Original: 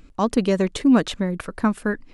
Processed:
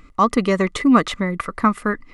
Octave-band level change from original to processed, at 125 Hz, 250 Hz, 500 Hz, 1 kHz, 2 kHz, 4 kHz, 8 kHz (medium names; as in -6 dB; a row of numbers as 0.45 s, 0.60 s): +1.0 dB, +1.0 dB, +1.5 dB, +9.0 dB, +5.5 dB, +1.5 dB, +1.0 dB